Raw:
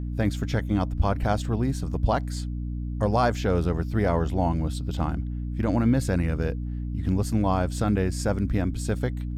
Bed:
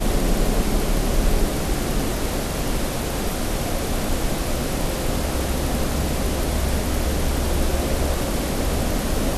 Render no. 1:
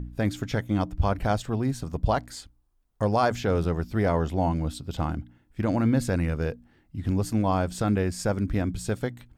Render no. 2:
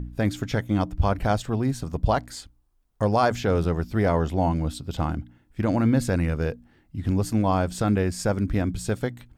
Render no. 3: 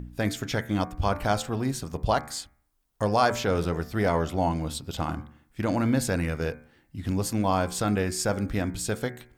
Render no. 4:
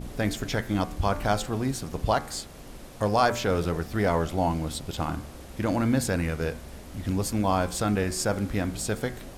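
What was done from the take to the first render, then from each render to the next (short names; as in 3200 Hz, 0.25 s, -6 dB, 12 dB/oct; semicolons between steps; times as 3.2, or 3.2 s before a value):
de-hum 60 Hz, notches 5
gain +2 dB
tilt +1.5 dB/oct; de-hum 74.11 Hz, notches 33
add bed -20.5 dB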